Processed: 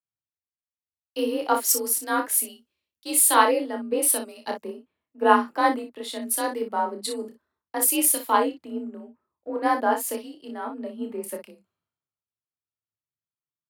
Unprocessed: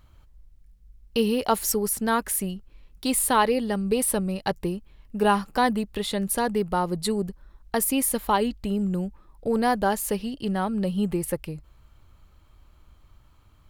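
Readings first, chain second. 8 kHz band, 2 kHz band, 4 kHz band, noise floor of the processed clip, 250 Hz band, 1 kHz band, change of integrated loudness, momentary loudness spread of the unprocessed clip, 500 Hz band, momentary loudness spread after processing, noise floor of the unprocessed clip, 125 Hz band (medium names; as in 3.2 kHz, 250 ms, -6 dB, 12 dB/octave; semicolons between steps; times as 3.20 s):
+5.0 dB, +1.5 dB, -1.0 dB, under -85 dBFS, -4.5 dB, +2.0 dB, +2.0 dB, 9 LU, -1.0 dB, 16 LU, -56 dBFS, under -20 dB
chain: high-pass 230 Hz 12 dB/octave; frequency shift +40 Hz; early reflections 29 ms -5.5 dB, 59 ms -8 dB; three bands expanded up and down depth 100%; trim -3 dB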